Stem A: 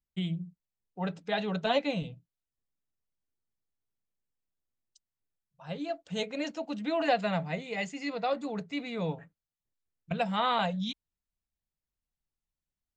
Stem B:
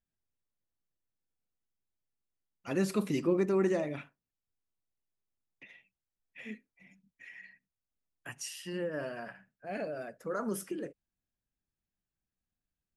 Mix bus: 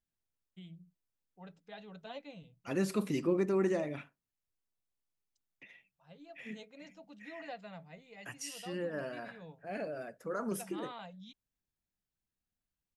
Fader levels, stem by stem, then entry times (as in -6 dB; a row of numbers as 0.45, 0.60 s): -18.5, -2.0 dB; 0.40, 0.00 s